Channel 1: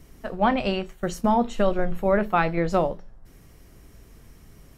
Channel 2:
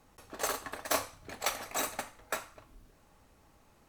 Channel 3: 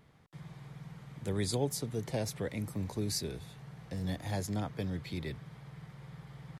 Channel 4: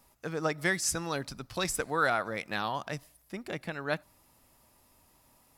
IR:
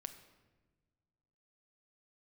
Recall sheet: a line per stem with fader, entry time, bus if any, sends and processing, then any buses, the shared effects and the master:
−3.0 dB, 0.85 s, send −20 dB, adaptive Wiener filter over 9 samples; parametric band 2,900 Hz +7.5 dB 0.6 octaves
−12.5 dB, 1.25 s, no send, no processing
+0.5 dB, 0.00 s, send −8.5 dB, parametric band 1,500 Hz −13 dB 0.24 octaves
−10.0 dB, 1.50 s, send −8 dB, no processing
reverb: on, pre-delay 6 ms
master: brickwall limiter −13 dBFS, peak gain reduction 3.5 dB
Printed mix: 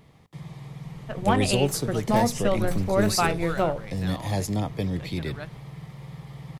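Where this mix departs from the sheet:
stem 3 +0.5 dB → +6.5 dB
master: missing brickwall limiter −13 dBFS, peak gain reduction 3.5 dB

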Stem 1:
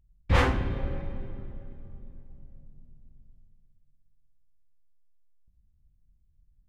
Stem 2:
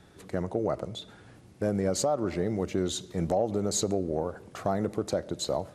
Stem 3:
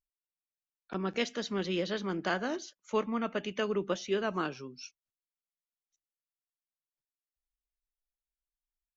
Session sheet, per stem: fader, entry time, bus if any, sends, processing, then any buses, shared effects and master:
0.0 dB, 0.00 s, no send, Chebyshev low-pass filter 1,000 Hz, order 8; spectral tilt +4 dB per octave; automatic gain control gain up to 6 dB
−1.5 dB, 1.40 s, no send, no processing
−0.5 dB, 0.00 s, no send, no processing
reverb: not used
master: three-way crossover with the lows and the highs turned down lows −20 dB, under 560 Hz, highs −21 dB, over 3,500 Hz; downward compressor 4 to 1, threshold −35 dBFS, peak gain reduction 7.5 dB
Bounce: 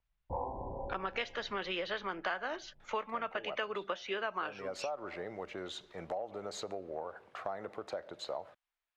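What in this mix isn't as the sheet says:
stem 1: missing spectral tilt +4 dB per octave
stem 2: entry 1.40 s → 2.80 s
stem 3 −0.5 dB → +11.0 dB

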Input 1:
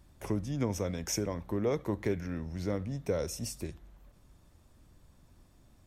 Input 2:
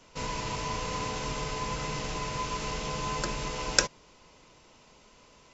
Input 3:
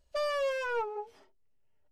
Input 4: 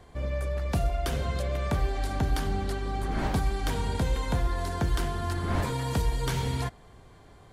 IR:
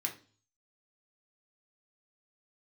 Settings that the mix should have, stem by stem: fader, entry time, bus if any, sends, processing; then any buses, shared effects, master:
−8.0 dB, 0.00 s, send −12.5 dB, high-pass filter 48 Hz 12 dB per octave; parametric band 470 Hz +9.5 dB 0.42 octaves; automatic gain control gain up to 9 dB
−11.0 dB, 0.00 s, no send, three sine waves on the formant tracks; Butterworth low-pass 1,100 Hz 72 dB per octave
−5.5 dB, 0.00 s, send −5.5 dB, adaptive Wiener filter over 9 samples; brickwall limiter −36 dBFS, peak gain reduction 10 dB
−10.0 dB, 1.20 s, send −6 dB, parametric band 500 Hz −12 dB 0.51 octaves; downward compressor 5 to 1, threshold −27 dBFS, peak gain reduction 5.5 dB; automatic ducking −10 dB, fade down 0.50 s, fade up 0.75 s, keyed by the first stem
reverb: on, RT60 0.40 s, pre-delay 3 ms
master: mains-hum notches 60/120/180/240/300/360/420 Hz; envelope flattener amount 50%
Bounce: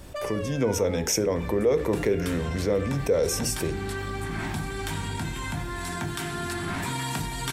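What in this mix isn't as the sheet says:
stem 2: muted
stem 4: send −6 dB → 0 dB

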